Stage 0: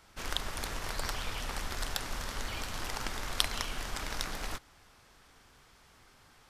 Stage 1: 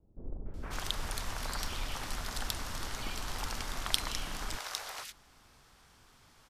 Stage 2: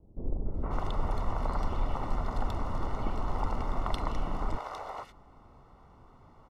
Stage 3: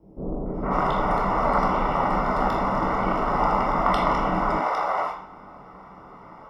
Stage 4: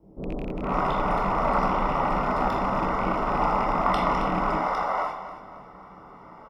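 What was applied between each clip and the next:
three-band delay without the direct sound lows, mids, highs 460/540 ms, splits 480/2,000 Hz
Savitzky-Golay smoothing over 65 samples; level +8.5 dB
convolution reverb RT60 0.60 s, pre-delay 15 ms, DRR −4 dB; level +3.5 dB
loose part that buzzes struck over −28 dBFS, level −29 dBFS; repeating echo 270 ms, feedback 36%, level −12.5 dB; level −2 dB

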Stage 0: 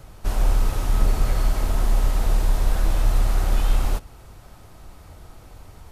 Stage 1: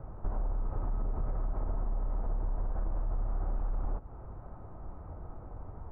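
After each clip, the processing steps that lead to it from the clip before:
low-pass filter 1,200 Hz 24 dB per octave
brickwall limiter −15.5 dBFS, peak gain reduction 8 dB
downward compressor 6 to 1, threshold −29 dBFS, peak gain reduction 10.5 dB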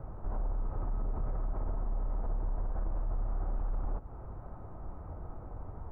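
brickwall limiter −27.5 dBFS, peak gain reduction 6 dB
level +1 dB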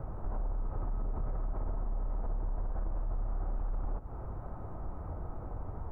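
downward compressor 2 to 1, threshold −38 dBFS, peak gain reduction 5.5 dB
level +4 dB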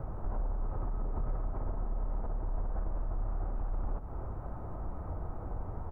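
single-tap delay 296 ms −10.5 dB
level +1 dB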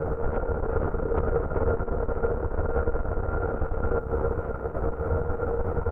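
double-tracking delay 13 ms −2 dB
harmonic generator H 6 −19 dB, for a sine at −21 dBFS
hollow resonant body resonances 470/1,400 Hz, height 17 dB, ringing for 45 ms
level +7.5 dB

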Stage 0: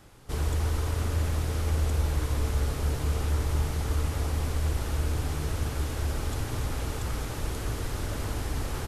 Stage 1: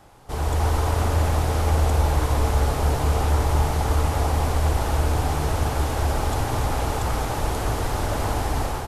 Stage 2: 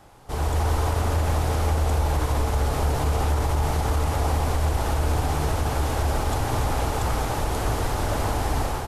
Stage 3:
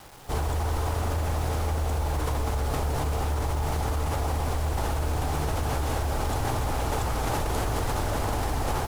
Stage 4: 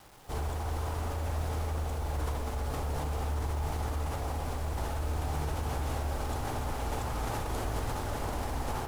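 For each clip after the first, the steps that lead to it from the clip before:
parametric band 790 Hz +10.5 dB 1 octave; automatic gain control gain up to 6 dB
brickwall limiter −14 dBFS, peak gain reduction 5.5 dB
in parallel at −2 dB: compressor whose output falls as the input rises −27 dBFS, ratio −0.5; on the sum: bit reduction 7 bits; level −6.5 dB
convolution reverb RT60 0.75 s, pre-delay 53 ms, DRR 7 dB; level −7.5 dB

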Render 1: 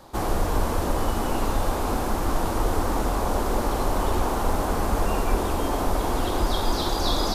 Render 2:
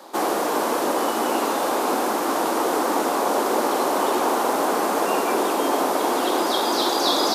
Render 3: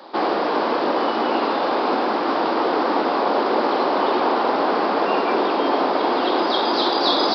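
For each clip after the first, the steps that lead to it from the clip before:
high-pass filter 270 Hz 24 dB per octave; level +6 dB
downsampling to 11,025 Hz; level +2 dB

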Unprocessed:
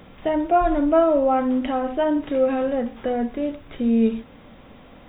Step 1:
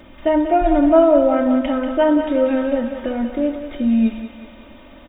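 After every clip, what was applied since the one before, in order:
comb filter 3.3 ms, depth 95%
feedback echo with a high-pass in the loop 188 ms, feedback 68%, high-pass 400 Hz, level −8 dB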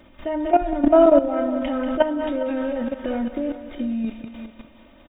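output level in coarse steps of 13 dB
single-tap delay 406 ms −15.5 dB
level +1.5 dB

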